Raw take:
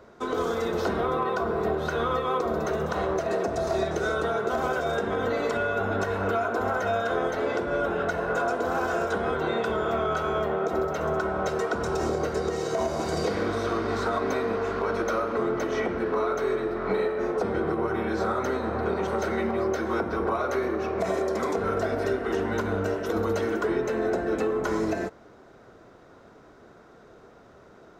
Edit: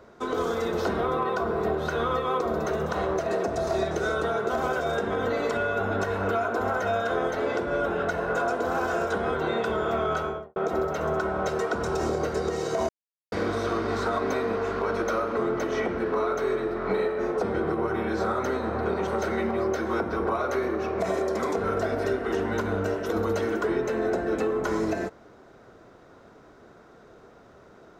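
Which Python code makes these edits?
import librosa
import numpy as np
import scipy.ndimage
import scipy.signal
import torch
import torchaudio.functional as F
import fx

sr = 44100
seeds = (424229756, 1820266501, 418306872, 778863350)

y = fx.studio_fade_out(x, sr, start_s=10.15, length_s=0.41)
y = fx.edit(y, sr, fx.silence(start_s=12.89, length_s=0.43), tone=tone)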